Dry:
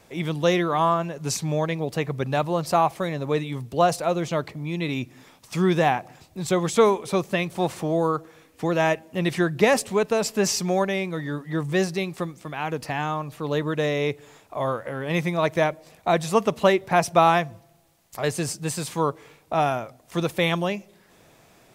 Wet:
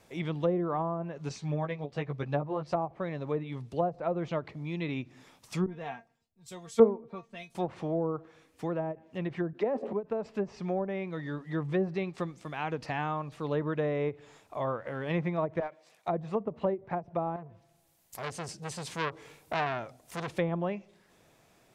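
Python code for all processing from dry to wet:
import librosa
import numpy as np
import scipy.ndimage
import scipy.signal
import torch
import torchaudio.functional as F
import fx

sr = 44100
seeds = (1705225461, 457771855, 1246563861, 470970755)

y = fx.chain(x, sr, fx.lowpass(hz=8800.0, slope=12),
    fx.doubler(ms=14.0, db=-3.5),
    fx.upward_expand(threshold_db=-31.0, expansion=1.5), at=(1.29, 2.73))
y = fx.chain(y, sr, fx.low_shelf(hz=120.0, db=6.0),
    fx.comb_fb(f0_hz=230.0, decay_s=0.15, harmonics='all', damping=0.0, mix_pct=90),
    fx.band_widen(depth_pct=100), at=(5.66, 7.55))
y = fx.chain(y, sr, fx.highpass(hz=260.0, slope=24),
    fx.sustainer(db_per_s=39.0), at=(9.53, 9.93))
y = fx.chain(y, sr, fx.highpass(hz=870.0, slope=6),
    fx.clip_hard(threshold_db=-21.5), at=(15.6, 16.08))
y = fx.chain(y, sr, fx.high_shelf(hz=9600.0, db=11.5),
    fx.notch(hz=1200.0, q=18.0),
    fx.transformer_sat(knee_hz=3100.0), at=(17.36, 20.28))
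y = fx.env_lowpass_down(y, sr, base_hz=610.0, full_db=-17.0)
y = fx.rider(y, sr, range_db=10, speed_s=2.0)
y = fx.end_taper(y, sr, db_per_s=360.0)
y = F.gain(torch.from_numpy(y), -8.0).numpy()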